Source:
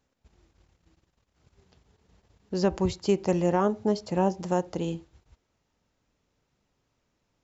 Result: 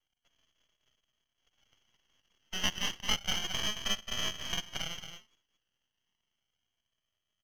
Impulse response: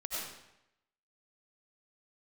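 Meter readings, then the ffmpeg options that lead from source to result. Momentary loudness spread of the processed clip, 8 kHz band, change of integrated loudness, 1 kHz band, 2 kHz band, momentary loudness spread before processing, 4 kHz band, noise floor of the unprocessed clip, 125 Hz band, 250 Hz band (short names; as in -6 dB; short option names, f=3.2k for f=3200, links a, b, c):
10 LU, n/a, -6.5 dB, -12.0 dB, +5.0 dB, 9 LU, +12.5 dB, -77 dBFS, -16.0 dB, -19.0 dB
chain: -filter_complex "[0:a]aresample=16000,acrusher=samples=20:mix=1:aa=0.000001:lfo=1:lforange=12:lforate=0.31,aresample=44100,highpass=f=380:p=1,asplit=2[a][b];[b]aecho=0:1:221:0.398[c];[a][c]amix=inputs=2:normalize=0,lowpass=f=2.9k:t=q:w=0.5098,lowpass=f=2.9k:t=q:w=0.6013,lowpass=f=2.9k:t=q:w=0.9,lowpass=f=2.9k:t=q:w=2.563,afreqshift=-3400,bandreject=f=2.5k:w=8.6,aeval=exprs='max(val(0),0)':c=same"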